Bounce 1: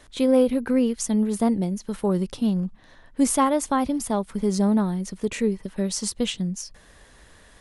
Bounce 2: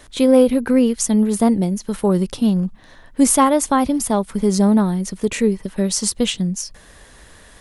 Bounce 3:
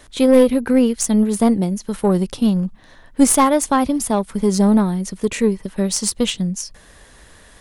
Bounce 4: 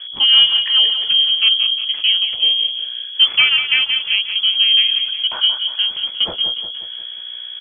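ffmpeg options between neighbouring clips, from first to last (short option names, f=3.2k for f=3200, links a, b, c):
-af "highshelf=f=10k:g=6,volume=6dB"
-af "aeval=exprs='0.891*(cos(1*acos(clip(val(0)/0.891,-1,1)))-cos(1*PI/2))+0.316*(cos(2*acos(clip(val(0)/0.891,-1,1)))-cos(2*PI/2))+0.0501*(cos(4*acos(clip(val(0)/0.891,-1,1)))-cos(4*PI/2))+0.0316*(cos(7*acos(clip(val(0)/0.891,-1,1)))-cos(7*PI/2))':c=same,volume=1.5dB"
-filter_complex "[0:a]aeval=exprs='val(0)+0.0316*(sin(2*PI*60*n/s)+sin(2*PI*2*60*n/s)/2+sin(2*PI*3*60*n/s)/3+sin(2*PI*4*60*n/s)/4+sin(2*PI*5*60*n/s)/5)':c=same,lowpass=f=2.9k:t=q:w=0.5098,lowpass=f=2.9k:t=q:w=0.6013,lowpass=f=2.9k:t=q:w=0.9,lowpass=f=2.9k:t=q:w=2.563,afreqshift=-3400,asplit=2[a][b];[b]aecho=0:1:179|358|537|716|895|1074:0.376|0.192|0.0978|0.0499|0.0254|0.013[c];[a][c]amix=inputs=2:normalize=0"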